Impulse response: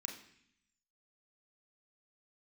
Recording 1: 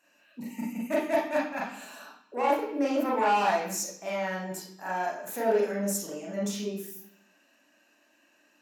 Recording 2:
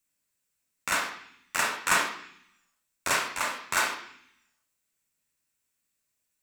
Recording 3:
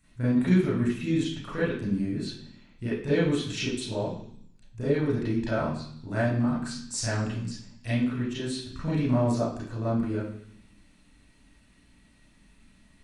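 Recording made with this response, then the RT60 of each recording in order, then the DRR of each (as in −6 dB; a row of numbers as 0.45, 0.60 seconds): 2; 0.65, 0.65, 0.65 seconds; −4.0, 1.0, −9.5 decibels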